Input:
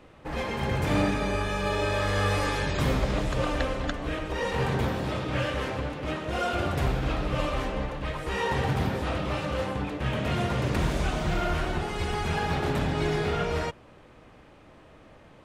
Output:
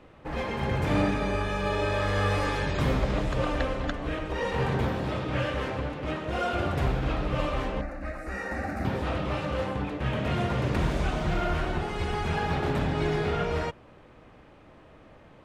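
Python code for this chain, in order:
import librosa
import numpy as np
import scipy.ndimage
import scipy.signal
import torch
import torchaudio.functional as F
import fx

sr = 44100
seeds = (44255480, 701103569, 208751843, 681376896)

y = fx.high_shelf(x, sr, hz=4900.0, db=-8.0)
y = fx.fixed_phaser(y, sr, hz=650.0, stages=8, at=(7.81, 8.85))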